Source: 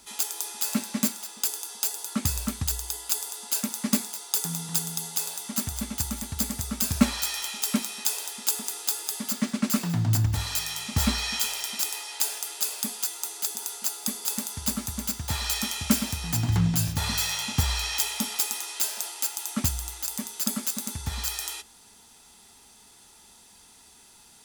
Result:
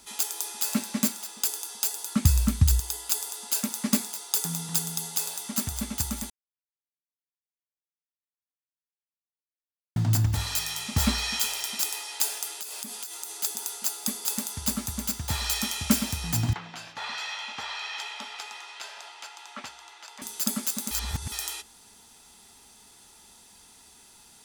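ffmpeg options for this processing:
ffmpeg -i in.wav -filter_complex "[0:a]asettb=1/sr,asplit=3[link_01][link_02][link_03];[link_01]atrim=end=1.584[link_04];[link_02]atrim=start=1.58:end=2.8,asetpts=PTS-STARTPTS,afade=type=in:duration=0.004:curve=qsin,afade=type=out:start_time=1.216:duration=0.004:curve=qsin,asubboost=boost=11:cutoff=210[link_05];[link_03]atrim=start=2.796[link_06];[link_04][link_05]acrossfade=duration=0.004:curve1=hsin:curve2=qsin[link_07];[link_07][link_06]acrossfade=duration=0.004:curve1=qsin:curve2=hsin,asettb=1/sr,asplit=3[link_08][link_09][link_10];[link_08]atrim=end=12.484[link_11];[link_09]atrim=start=12.48:end=13.35,asetpts=PTS-STARTPTS,afade=type=in:duration=0.004:curve=qsin,afade=type=out:start_time=0.866:duration=0.004:curve=qsin,acompressor=threshold=-32dB:ratio=12:attack=3.2:release=140:knee=1:detection=peak[link_12];[link_10]atrim=start=13.346[link_13];[link_11][link_12]acrossfade=duration=0.004:curve1=hsin:curve2=qsin[link_14];[link_14][link_13]acrossfade=duration=0.004:curve1=qsin:curve2=hsin,asettb=1/sr,asplit=3[link_15][link_16][link_17];[link_15]atrim=end=16.534[link_18];[link_16]atrim=start=16.53:end=20.22,asetpts=PTS-STARTPTS,afade=type=in:duration=0.004:curve=qsin,afade=type=out:start_time=3.686:duration=0.004:curve=qsin,highpass=670,lowpass=2900[link_19];[link_17]atrim=start=20.216[link_20];[link_18][link_19]acrossfade=duration=0.004:curve1=hsin:curve2=qsin[link_21];[link_21][link_20]acrossfade=duration=0.004:curve1=qsin:curve2=hsin,asplit=5[link_22][link_23][link_24][link_25][link_26];[link_22]atrim=end=6.3,asetpts=PTS-STARTPTS,afade=type=out:start_time=6.296:duration=0.004:curve=hsin[link_27];[link_23]atrim=start=6.3:end=9.96,asetpts=PTS-STARTPTS,volume=0[link_28];[link_24]atrim=start=9.96:end=20.912,asetpts=PTS-STARTPTS,afade=type=in:duration=0.004:curve=hsin[link_29];[link_25]atrim=start=20.908:end=21.322,asetpts=PTS-STARTPTS,areverse[link_30];[link_26]atrim=start=21.318[link_31];[link_27][link_28][link_29]concat=n=3:v=0:a=1[link_32];[link_32][link_30]acrossfade=duration=0.004:curve1=hsin:curve2=hsin[link_33];[link_33][link_31]acrossfade=duration=0.004:curve1=hsin:curve2=hsin" out.wav

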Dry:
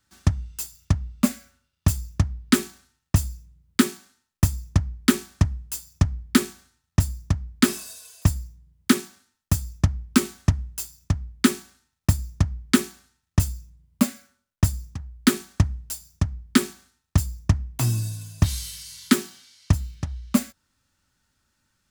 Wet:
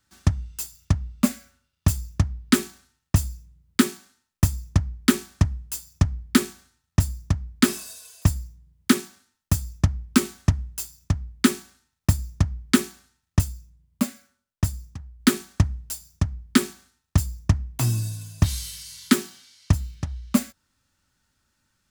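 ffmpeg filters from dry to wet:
ffmpeg -i in.wav -filter_complex "[0:a]asplit=3[link_01][link_02][link_03];[link_01]atrim=end=13.412[link_04];[link_02]atrim=start=13.408:end=15.202,asetpts=PTS-STARTPTS,volume=-3.5dB[link_05];[link_03]atrim=start=15.198[link_06];[link_04][link_05]acrossfade=duration=0.004:curve1=hsin:curve2=hsin[link_07];[link_07][link_06]acrossfade=duration=0.004:curve1=hsin:curve2=hsin" out.wav

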